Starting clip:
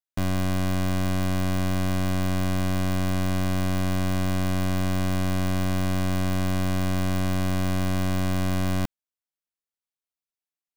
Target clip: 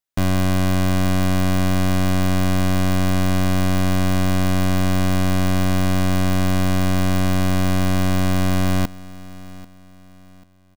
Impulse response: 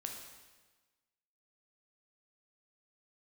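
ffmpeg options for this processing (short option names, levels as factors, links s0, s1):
-af "aecho=1:1:790|1580|2370:0.112|0.0393|0.0137,volume=2.11"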